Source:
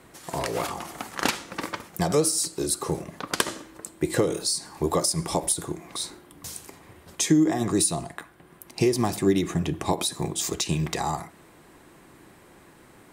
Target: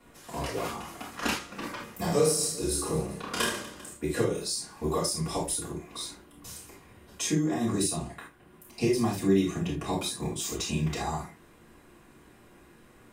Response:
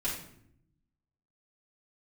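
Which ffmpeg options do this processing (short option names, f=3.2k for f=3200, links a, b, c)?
-filter_complex "[0:a]asettb=1/sr,asplit=3[a][b][c];[a]atrim=end=1.754[d];[b]atrim=start=1.75:end=3.93,asetpts=PTS-STARTPTS,afade=t=in:d=0.004:c=qsin,afade=t=out:st=2.176:d=0.004:c=qsin,aecho=1:1:30|75|142.5|243.8|395.6:0.631|0.398|0.251|0.158|0.1,atrim=end_sample=96138[e];[c]atrim=start=3.926[f];[d][e]acrossfade=d=0.004:c1=hsin:c2=qsin[g];[g][f]acrossfade=d=0.004:c1=qsin:c2=hsin[h];[1:a]atrim=start_sample=2205,atrim=end_sample=3969[i];[h][i]afir=irnorm=-1:irlink=0,volume=-8.5dB"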